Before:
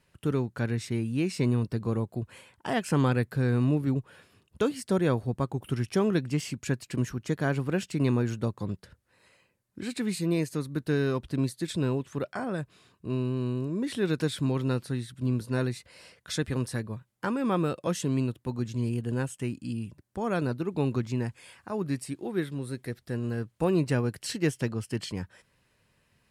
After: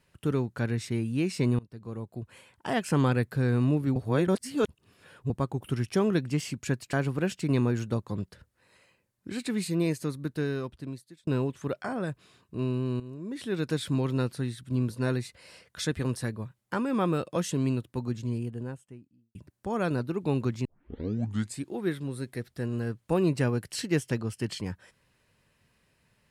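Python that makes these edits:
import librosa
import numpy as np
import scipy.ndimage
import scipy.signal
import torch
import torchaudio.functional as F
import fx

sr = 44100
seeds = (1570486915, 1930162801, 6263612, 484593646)

y = fx.studio_fade_out(x, sr, start_s=18.4, length_s=1.46)
y = fx.edit(y, sr, fx.fade_in_from(start_s=1.59, length_s=1.13, floor_db=-23.5),
    fx.reverse_span(start_s=3.96, length_s=1.34),
    fx.cut(start_s=6.93, length_s=0.51),
    fx.fade_out_span(start_s=10.54, length_s=1.24),
    fx.fade_in_from(start_s=13.51, length_s=0.89, floor_db=-13.0),
    fx.tape_start(start_s=21.16, length_s=0.95), tone=tone)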